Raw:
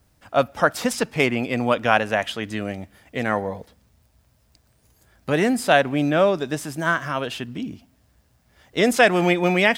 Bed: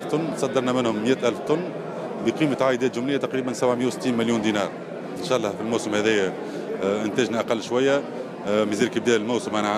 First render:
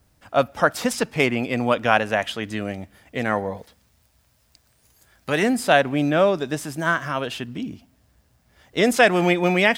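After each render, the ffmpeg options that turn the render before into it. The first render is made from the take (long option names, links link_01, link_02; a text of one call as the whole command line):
ffmpeg -i in.wav -filter_complex "[0:a]asettb=1/sr,asplit=3[link_01][link_02][link_03];[link_01]atrim=end=3.574[link_04];[link_02]atrim=start=3.57:end=5.43,asetpts=PTS-STARTPTS,afade=type=in:duration=0.004:curve=qsin,afade=type=out:start_time=1.856:duration=0.004:curve=qsin,tiltshelf=frequency=850:gain=-4[link_05];[link_03]atrim=start=5.426[link_06];[link_04][link_05]acrossfade=duration=0.004:curve1=hsin:curve2=qsin[link_07];[link_07][link_06]acrossfade=duration=0.004:curve1=qsin:curve2=hsin" out.wav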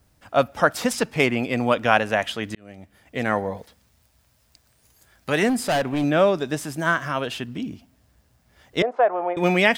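ffmpeg -i in.wav -filter_complex "[0:a]asettb=1/sr,asplit=3[link_01][link_02][link_03];[link_01]atrim=end=5.494[link_04];[link_02]atrim=start=5.49:end=6.04,asetpts=PTS-STARTPTS,afade=type=in:duration=0.004:curve=qsin,afade=type=out:start_time=0.546:duration=0.004:curve=qsin,asoftclip=type=hard:threshold=-18.5dB[link_05];[link_03]atrim=start=6.036[link_06];[link_04][link_05]acrossfade=duration=0.004:curve1=hsin:curve2=qsin[link_07];[link_07][link_06]acrossfade=duration=0.004:curve1=qsin:curve2=hsin,asettb=1/sr,asplit=3[link_08][link_09][link_10];[link_08]atrim=end=8.824[link_11];[link_09]atrim=start=8.82:end=9.37,asetpts=PTS-STARTPTS,afade=type=in:duration=0.004:curve=qsin,afade=type=out:start_time=0.546:duration=0.004:curve=qsin,asuperpass=centerf=750:order=4:qfactor=1.2[link_12];[link_10]atrim=start=9.366[link_13];[link_11][link_12]acrossfade=duration=0.004:curve1=hsin:curve2=qsin[link_14];[link_14][link_13]acrossfade=duration=0.004:curve1=qsin:curve2=hsin,asplit=2[link_15][link_16];[link_15]atrim=end=2.55,asetpts=PTS-STARTPTS,afade=type=out:start_time=2.546:duration=0.004:curve=hsin[link_17];[link_16]atrim=start=2.55,asetpts=PTS-STARTPTS,afade=type=in:duration=0.69[link_18];[link_17][link_18]concat=n=2:v=0:a=1" out.wav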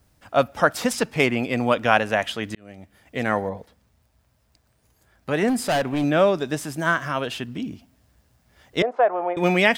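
ffmpeg -i in.wav -filter_complex "[0:a]asettb=1/sr,asplit=3[link_01][link_02][link_03];[link_01]atrim=end=3.494[link_04];[link_02]atrim=start=3.49:end=5.48,asetpts=PTS-STARTPTS,afade=type=in:duration=0.004:curve=qsin,afade=type=out:start_time=1.986:duration=0.004:curve=qsin,highshelf=frequency=2000:gain=-9[link_05];[link_03]atrim=start=5.476[link_06];[link_04][link_05]acrossfade=duration=0.004:curve1=hsin:curve2=qsin[link_07];[link_07][link_06]acrossfade=duration=0.004:curve1=qsin:curve2=hsin" out.wav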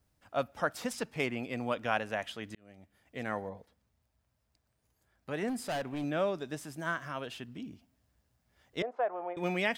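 ffmpeg -i in.wav -af "volume=-13dB" out.wav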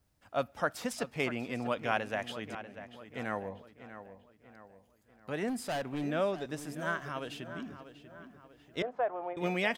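ffmpeg -i in.wav -filter_complex "[0:a]asplit=2[link_01][link_02];[link_02]adelay=641,lowpass=frequency=3300:poles=1,volume=-12dB,asplit=2[link_03][link_04];[link_04]adelay=641,lowpass=frequency=3300:poles=1,volume=0.47,asplit=2[link_05][link_06];[link_06]adelay=641,lowpass=frequency=3300:poles=1,volume=0.47,asplit=2[link_07][link_08];[link_08]adelay=641,lowpass=frequency=3300:poles=1,volume=0.47,asplit=2[link_09][link_10];[link_10]adelay=641,lowpass=frequency=3300:poles=1,volume=0.47[link_11];[link_01][link_03][link_05][link_07][link_09][link_11]amix=inputs=6:normalize=0" out.wav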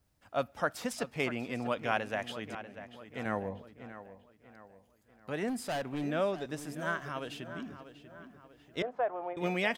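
ffmpeg -i in.wav -filter_complex "[0:a]asettb=1/sr,asplit=3[link_01][link_02][link_03];[link_01]atrim=end=3.254[link_04];[link_02]atrim=start=3.25:end=3.92,asetpts=PTS-STARTPTS,afade=type=in:duration=0.004:curve=qsin,afade=type=out:start_time=0.666:duration=0.004:curve=qsin,lowshelf=frequency=410:gain=5.5[link_05];[link_03]atrim=start=3.916[link_06];[link_04][link_05]acrossfade=duration=0.004:curve1=hsin:curve2=qsin[link_07];[link_07][link_06]acrossfade=duration=0.004:curve1=qsin:curve2=hsin" out.wav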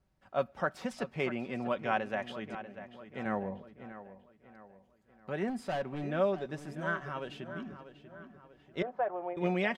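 ffmpeg -i in.wav -af "aemphasis=mode=reproduction:type=75kf,aecho=1:1:5.3:0.43" out.wav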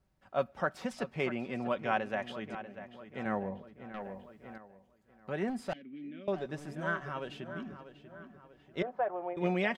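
ffmpeg -i in.wav -filter_complex "[0:a]asettb=1/sr,asplit=3[link_01][link_02][link_03];[link_01]atrim=end=3.944[link_04];[link_02]atrim=start=3.94:end=4.58,asetpts=PTS-STARTPTS,afade=type=in:duration=0.004:curve=qsin,afade=type=out:start_time=0.636:duration=0.004:curve=qsin,aeval=exprs='0.0211*sin(PI/2*1.78*val(0)/0.0211)':channel_layout=same[link_05];[link_03]atrim=start=4.576[link_06];[link_04][link_05]acrossfade=duration=0.004:curve1=hsin:curve2=qsin[link_07];[link_07][link_06]acrossfade=duration=0.004:curve1=qsin:curve2=hsin,asettb=1/sr,asplit=3[link_08][link_09][link_10];[link_08]atrim=end=5.734[link_11];[link_09]atrim=start=5.73:end=6.28,asetpts=PTS-STARTPTS,afade=type=in:duration=0.004:curve=qsin,afade=type=out:start_time=0.546:duration=0.004:curve=qsin,asplit=3[link_12][link_13][link_14];[link_12]bandpass=frequency=270:width_type=q:width=8,volume=0dB[link_15];[link_13]bandpass=frequency=2290:width_type=q:width=8,volume=-6dB[link_16];[link_14]bandpass=frequency=3010:width_type=q:width=8,volume=-9dB[link_17];[link_15][link_16][link_17]amix=inputs=3:normalize=0[link_18];[link_10]atrim=start=6.276[link_19];[link_11][link_18]acrossfade=duration=0.004:curve1=hsin:curve2=qsin[link_20];[link_20][link_19]acrossfade=duration=0.004:curve1=qsin:curve2=hsin" out.wav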